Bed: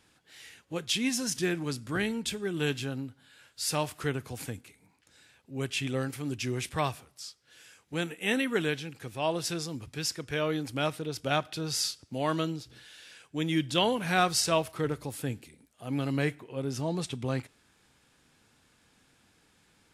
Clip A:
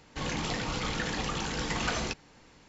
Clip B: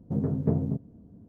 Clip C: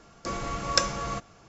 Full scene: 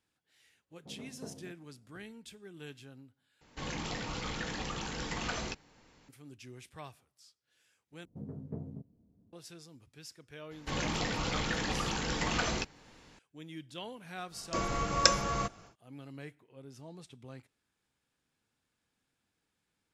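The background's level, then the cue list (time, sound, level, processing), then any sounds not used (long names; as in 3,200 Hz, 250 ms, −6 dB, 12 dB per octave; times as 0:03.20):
bed −17.5 dB
0:00.75: mix in B −11 dB + resonant band-pass 1,400 Hz, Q 0.54
0:03.41: overwrite with A −5.5 dB
0:08.05: overwrite with B −16 dB
0:10.51: mix in A −1 dB
0:14.28: mix in C −0.5 dB, fades 0.10 s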